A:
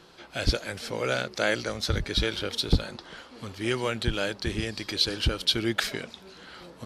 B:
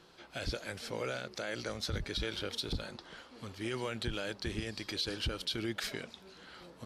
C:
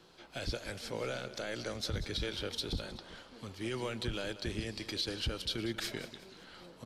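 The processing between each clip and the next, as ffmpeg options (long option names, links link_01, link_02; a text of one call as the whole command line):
ffmpeg -i in.wav -af "alimiter=limit=-18.5dB:level=0:latency=1:release=50,volume=-6.5dB" out.wav
ffmpeg -i in.wav -filter_complex "[0:a]acrossover=split=140|1300|1900[link_01][link_02][link_03][link_04];[link_03]aeval=exprs='max(val(0),0)':channel_layout=same[link_05];[link_01][link_02][link_05][link_04]amix=inputs=4:normalize=0,aecho=1:1:188|376|564|752:0.2|0.0798|0.0319|0.0128" out.wav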